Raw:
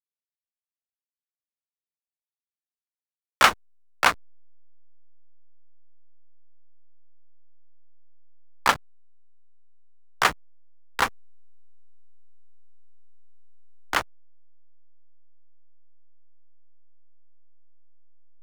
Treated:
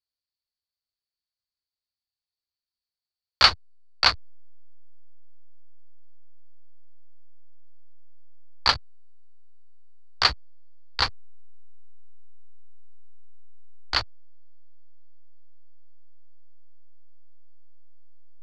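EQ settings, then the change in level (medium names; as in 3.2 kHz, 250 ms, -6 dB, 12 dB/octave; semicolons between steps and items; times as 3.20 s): resonant low-pass 4.5 kHz, resonance Q 14; resonant low shelf 130 Hz +11.5 dB, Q 1.5; -4.5 dB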